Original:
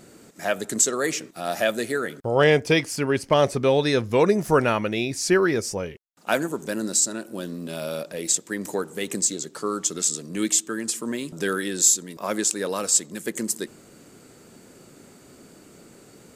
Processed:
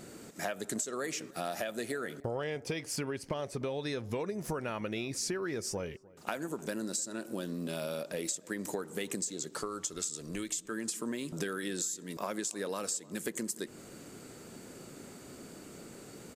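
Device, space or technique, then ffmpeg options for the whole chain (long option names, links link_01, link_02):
serial compression, leveller first: -filter_complex "[0:a]acompressor=threshold=-22dB:ratio=3,acompressor=threshold=-33dB:ratio=6,asplit=2[link_01][link_02];[link_02]adelay=303,lowpass=frequency=1300:poles=1,volume=-21.5dB,asplit=2[link_03][link_04];[link_04]adelay=303,lowpass=frequency=1300:poles=1,volume=0.41,asplit=2[link_05][link_06];[link_06]adelay=303,lowpass=frequency=1300:poles=1,volume=0.41[link_07];[link_01][link_03][link_05][link_07]amix=inputs=4:normalize=0,asplit=3[link_08][link_09][link_10];[link_08]afade=type=out:start_time=9.6:duration=0.02[link_11];[link_09]asubboost=boost=8:cutoff=65,afade=type=in:start_time=9.6:duration=0.02,afade=type=out:start_time=10.7:duration=0.02[link_12];[link_10]afade=type=in:start_time=10.7:duration=0.02[link_13];[link_11][link_12][link_13]amix=inputs=3:normalize=0"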